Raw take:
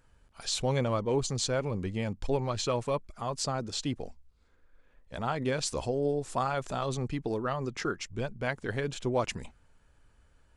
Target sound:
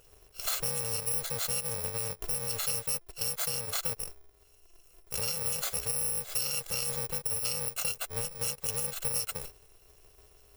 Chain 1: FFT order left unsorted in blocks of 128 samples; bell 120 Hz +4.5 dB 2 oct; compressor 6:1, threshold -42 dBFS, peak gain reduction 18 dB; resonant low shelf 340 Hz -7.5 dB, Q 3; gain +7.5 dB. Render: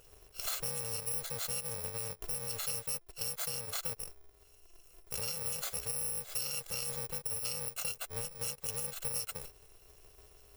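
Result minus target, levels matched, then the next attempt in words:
compressor: peak gain reduction +5 dB
FFT order left unsorted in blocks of 128 samples; bell 120 Hz +4.5 dB 2 oct; compressor 6:1, threshold -36 dBFS, peak gain reduction 13 dB; resonant low shelf 340 Hz -7.5 dB, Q 3; gain +7.5 dB

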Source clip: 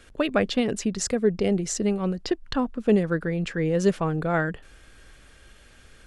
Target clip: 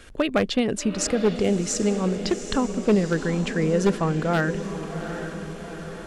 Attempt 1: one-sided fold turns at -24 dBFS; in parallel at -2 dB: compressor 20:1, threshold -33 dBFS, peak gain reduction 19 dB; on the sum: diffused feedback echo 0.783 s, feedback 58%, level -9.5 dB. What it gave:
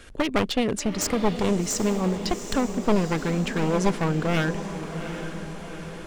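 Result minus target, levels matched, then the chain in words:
one-sided fold: distortion +14 dB
one-sided fold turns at -16.5 dBFS; in parallel at -2 dB: compressor 20:1, threshold -33 dBFS, peak gain reduction 19 dB; on the sum: diffused feedback echo 0.783 s, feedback 58%, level -9.5 dB

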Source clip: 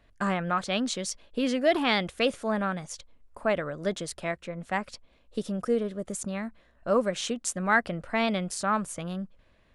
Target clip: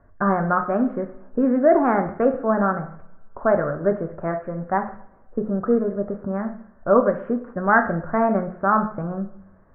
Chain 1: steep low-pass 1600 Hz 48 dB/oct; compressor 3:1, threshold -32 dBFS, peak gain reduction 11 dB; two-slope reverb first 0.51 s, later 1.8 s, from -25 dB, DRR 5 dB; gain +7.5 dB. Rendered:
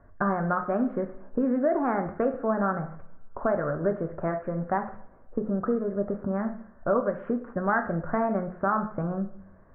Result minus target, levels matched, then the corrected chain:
compressor: peak gain reduction +11 dB
steep low-pass 1600 Hz 48 dB/oct; two-slope reverb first 0.51 s, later 1.8 s, from -25 dB, DRR 5 dB; gain +7.5 dB

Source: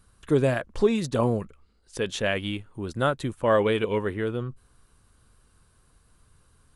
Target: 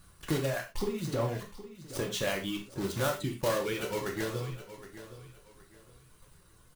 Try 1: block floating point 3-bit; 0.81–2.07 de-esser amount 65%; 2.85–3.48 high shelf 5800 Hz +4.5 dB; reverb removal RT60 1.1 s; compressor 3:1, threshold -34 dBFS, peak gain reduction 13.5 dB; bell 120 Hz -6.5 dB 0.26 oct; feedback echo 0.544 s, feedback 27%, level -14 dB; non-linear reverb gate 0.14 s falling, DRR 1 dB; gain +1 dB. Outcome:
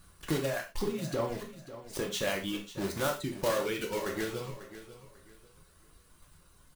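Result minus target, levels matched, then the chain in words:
echo 0.224 s early; 125 Hz band -4.0 dB
block floating point 3-bit; 0.81–2.07 de-esser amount 65%; 2.85–3.48 high shelf 5800 Hz +4.5 dB; reverb removal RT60 1.1 s; compressor 3:1, threshold -34 dBFS, peak gain reduction 13.5 dB; bell 120 Hz +2.5 dB 0.26 oct; feedback echo 0.768 s, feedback 27%, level -14 dB; non-linear reverb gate 0.14 s falling, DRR 1 dB; gain +1 dB

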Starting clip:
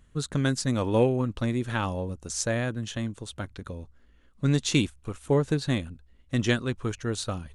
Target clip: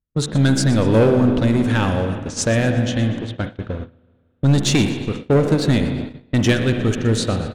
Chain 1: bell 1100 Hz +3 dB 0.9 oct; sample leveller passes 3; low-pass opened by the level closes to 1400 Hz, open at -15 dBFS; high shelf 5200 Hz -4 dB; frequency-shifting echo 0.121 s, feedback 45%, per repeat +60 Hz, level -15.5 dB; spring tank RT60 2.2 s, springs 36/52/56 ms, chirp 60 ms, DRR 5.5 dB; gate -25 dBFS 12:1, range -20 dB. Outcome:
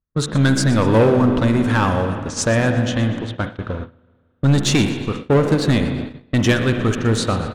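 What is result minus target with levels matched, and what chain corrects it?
1000 Hz band +4.0 dB
bell 1100 Hz -5.5 dB 0.9 oct; sample leveller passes 3; low-pass opened by the level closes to 1400 Hz, open at -15 dBFS; high shelf 5200 Hz -4 dB; frequency-shifting echo 0.121 s, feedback 45%, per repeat +60 Hz, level -15.5 dB; spring tank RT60 2.2 s, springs 36/52/56 ms, chirp 60 ms, DRR 5.5 dB; gate -25 dBFS 12:1, range -20 dB

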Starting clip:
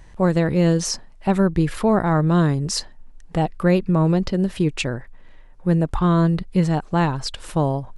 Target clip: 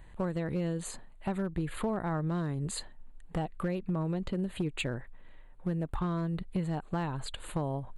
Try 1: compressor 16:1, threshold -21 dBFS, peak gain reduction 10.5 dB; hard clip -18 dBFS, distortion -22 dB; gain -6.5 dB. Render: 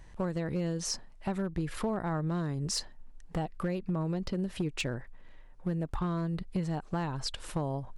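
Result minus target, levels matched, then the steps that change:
4000 Hz band +4.5 dB
add after compressor: Butterworth band-stop 5500 Hz, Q 1.9

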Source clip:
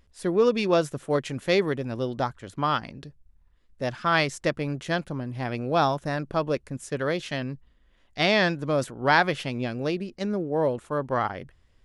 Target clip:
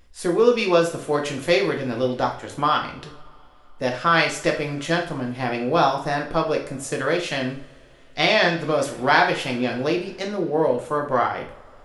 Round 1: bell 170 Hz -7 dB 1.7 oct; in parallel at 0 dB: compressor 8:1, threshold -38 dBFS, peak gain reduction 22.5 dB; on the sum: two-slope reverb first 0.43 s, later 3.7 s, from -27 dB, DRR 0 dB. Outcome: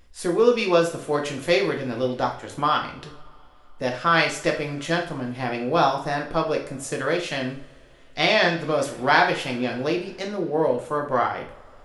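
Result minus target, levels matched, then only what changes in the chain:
compressor: peak gain reduction +6.5 dB
change: compressor 8:1, threshold -30.5 dBFS, peak gain reduction 15.5 dB

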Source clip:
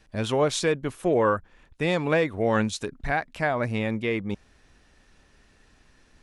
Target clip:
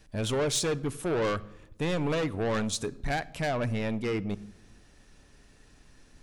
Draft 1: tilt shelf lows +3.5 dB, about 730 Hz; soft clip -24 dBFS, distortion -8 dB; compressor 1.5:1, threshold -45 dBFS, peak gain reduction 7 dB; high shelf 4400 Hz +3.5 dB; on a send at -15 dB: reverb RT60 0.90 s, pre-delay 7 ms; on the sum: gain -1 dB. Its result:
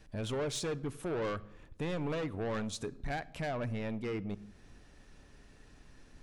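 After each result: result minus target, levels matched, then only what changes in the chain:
compressor: peak gain reduction +7 dB; 8000 Hz band -3.5 dB
remove: compressor 1.5:1, threshold -45 dBFS, peak gain reduction 7 dB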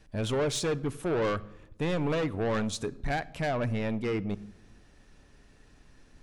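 8000 Hz band -4.5 dB
change: high shelf 4400 Hz +10.5 dB

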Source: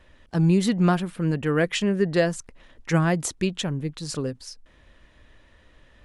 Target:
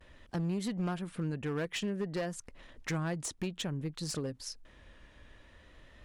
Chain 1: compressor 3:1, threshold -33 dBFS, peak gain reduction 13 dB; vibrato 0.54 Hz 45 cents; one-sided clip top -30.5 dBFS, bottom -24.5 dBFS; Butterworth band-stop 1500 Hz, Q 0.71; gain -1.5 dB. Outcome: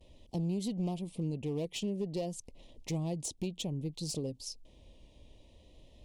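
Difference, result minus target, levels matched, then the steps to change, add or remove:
2000 Hz band -12.0 dB
remove: Butterworth band-stop 1500 Hz, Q 0.71

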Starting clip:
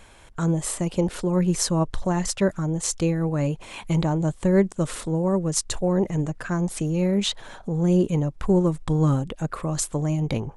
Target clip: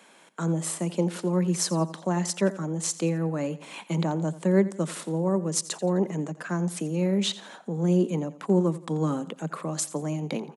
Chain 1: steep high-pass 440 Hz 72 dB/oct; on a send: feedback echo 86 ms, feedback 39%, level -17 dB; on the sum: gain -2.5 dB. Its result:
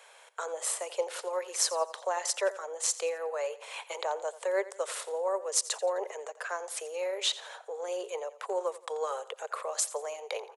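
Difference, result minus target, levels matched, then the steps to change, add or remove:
500 Hz band +2.5 dB
change: steep high-pass 160 Hz 72 dB/oct

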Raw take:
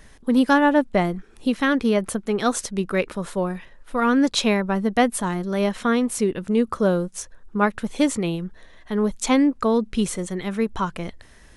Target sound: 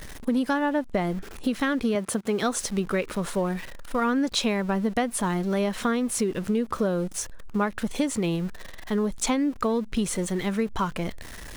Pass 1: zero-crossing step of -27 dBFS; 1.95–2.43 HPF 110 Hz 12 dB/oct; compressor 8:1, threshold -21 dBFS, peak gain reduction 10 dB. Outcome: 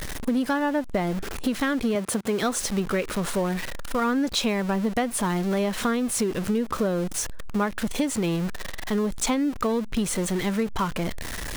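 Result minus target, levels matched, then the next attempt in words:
zero-crossing step: distortion +9 dB
zero-crossing step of -36.5 dBFS; 1.95–2.43 HPF 110 Hz 12 dB/oct; compressor 8:1, threshold -21 dBFS, peak gain reduction 9.5 dB

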